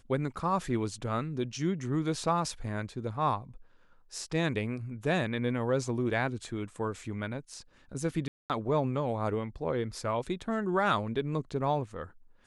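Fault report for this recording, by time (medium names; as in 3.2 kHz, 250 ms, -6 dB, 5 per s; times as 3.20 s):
8.28–8.50 s: dropout 218 ms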